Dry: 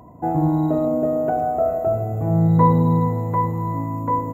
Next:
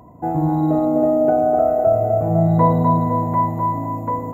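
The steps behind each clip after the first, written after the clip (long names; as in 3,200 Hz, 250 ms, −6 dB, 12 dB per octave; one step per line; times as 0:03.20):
feedback echo with a band-pass in the loop 252 ms, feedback 73%, band-pass 650 Hz, level −3 dB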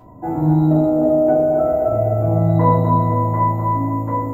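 rectangular room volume 160 cubic metres, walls furnished, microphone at 2.9 metres
level −5 dB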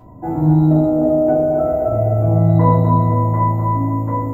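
low-shelf EQ 230 Hz +5.5 dB
level −1 dB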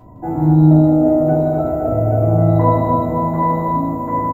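multi-tap delay 161/604/824 ms −6/−19.5/−5.5 dB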